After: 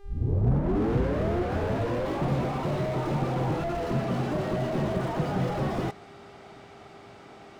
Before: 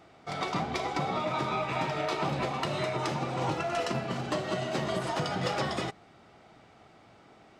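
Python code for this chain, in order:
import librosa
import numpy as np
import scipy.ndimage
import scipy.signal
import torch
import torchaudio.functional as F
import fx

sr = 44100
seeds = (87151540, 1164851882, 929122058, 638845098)

y = fx.tape_start_head(x, sr, length_s=2.44)
y = fx.dmg_buzz(y, sr, base_hz=400.0, harmonics=34, level_db=-62.0, tilt_db=-9, odd_only=False)
y = fx.slew_limit(y, sr, full_power_hz=10.0)
y = y * librosa.db_to_amplitude(7.5)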